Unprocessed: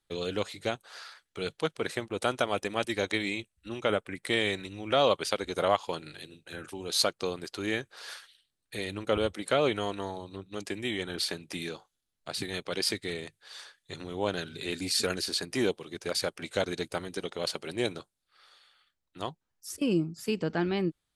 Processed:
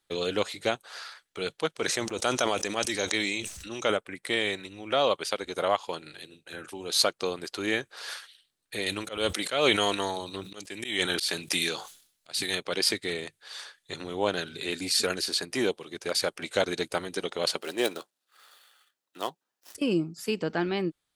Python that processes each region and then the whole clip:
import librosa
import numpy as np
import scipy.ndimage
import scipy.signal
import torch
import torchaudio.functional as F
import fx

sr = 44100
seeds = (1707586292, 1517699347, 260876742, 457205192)

y = fx.chain(x, sr, fx.peak_eq(hz=6100.0, db=12.0, octaves=0.76),
    fx.sustainer(db_per_s=26.0), at=(1.77, 3.97))
y = fx.chain(y, sr, fx.high_shelf(hz=2100.0, db=10.0),
    fx.auto_swell(attack_ms=216.0),
    fx.sustainer(db_per_s=100.0), at=(8.86, 12.55))
y = fx.chain(y, sr, fx.dead_time(dead_ms=0.057),
    fx.highpass(hz=250.0, slope=12),
    fx.notch(hz=2200.0, q=13.0), at=(17.58, 19.75))
y = fx.rider(y, sr, range_db=10, speed_s=2.0)
y = fx.low_shelf(y, sr, hz=170.0, db=-10.0)
y = y * librosa.db_to_amplitude(2.0)